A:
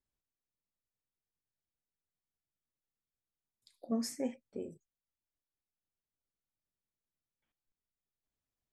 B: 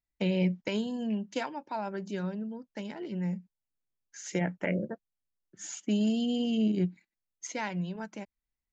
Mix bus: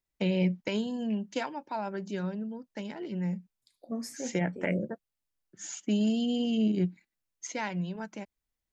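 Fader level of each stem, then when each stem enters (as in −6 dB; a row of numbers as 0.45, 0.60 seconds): −1.5, +0.5 decibels; 0.00, 0.00 seconds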